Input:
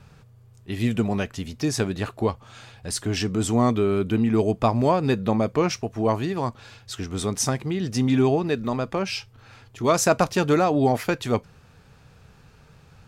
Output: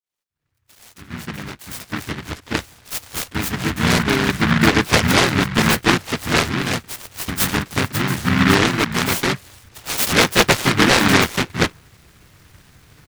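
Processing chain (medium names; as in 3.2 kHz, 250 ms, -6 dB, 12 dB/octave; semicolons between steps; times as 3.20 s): fade-in on the opening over 4.35 s; bass shelf 100 Hz -10 dB; bands offset in time highs, lows 290 ms, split 1.3 kHz; harmony voices -7 st -3 dB, -5 st -1 dB; delay time shaken by noise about 1.5 kHz, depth 0.4 ms; trim +3 dB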